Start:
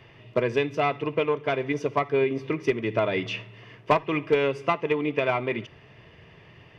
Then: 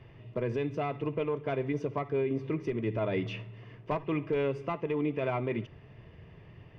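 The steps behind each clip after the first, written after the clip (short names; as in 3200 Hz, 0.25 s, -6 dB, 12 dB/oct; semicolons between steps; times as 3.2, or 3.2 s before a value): tilt -2.5 dB/oct; limiter -15.5 dBFS, peak gain reduction 8.5 dB; gain -6 dB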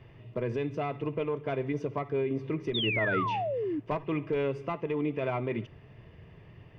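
painted sound fall, 2.74–3.8, 280–3800 Hz -31 dBFS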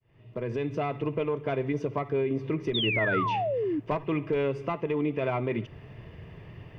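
opening faded in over 0.76 s; in parallel at +0.5 dB: compressor, threshold -38 dBFS, peak gain reduction 13 dB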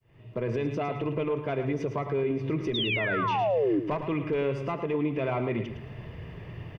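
limiter -24 dBFS, peak gain reduction 7.5 dB; feedback echo 0.109 s, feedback 28%, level -9 dB; gain +3.5 dB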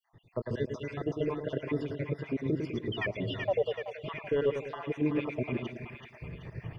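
random spectral dropouts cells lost 68%; split-band echo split 750 Hz, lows 0.101 s, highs 0.38 s, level -5.5 dB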